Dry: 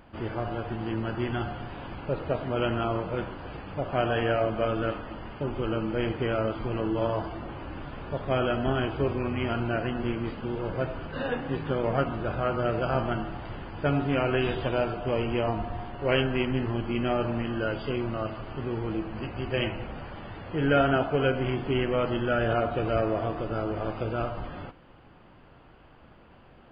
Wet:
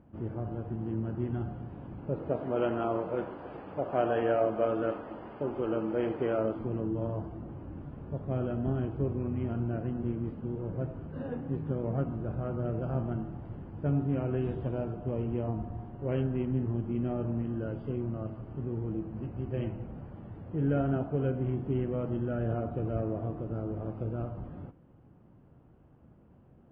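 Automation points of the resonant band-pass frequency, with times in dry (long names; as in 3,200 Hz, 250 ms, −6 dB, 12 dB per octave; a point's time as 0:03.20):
resonant band-pass, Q 0.71
0:01.94 150 Hz
0:02.59 470 Hz
0:06.33 470 Hz
0:06.88 140 Hz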